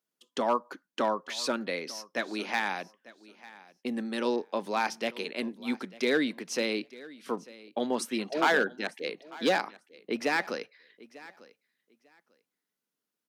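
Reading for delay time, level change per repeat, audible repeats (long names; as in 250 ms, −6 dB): 896 ms, −15.0 dB, 2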